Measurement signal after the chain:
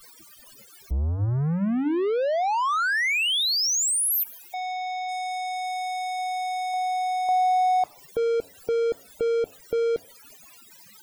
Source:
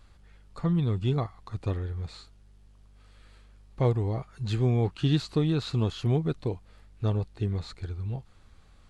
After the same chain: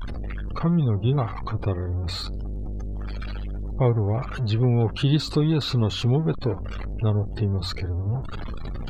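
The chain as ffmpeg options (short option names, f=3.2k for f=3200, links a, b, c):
-filter_complex "[0:a]aeval=exprs='val(0)+0.5*0.0299*sgn(val(0))':c=same,afftdn=nr=34:nf=-41,bandreject=f=91.77:t=h:w=4,bandreject=f=183.54:t=h:w=4,bandreject=f=275.31:t=h:w=4,asplit=2[a][b];[b]acompressor=threshold=-37dB:ratio=6,volume=-0.5dB[c];[a][c]amix=inputs=2:normalize=0,volume=1.5dB"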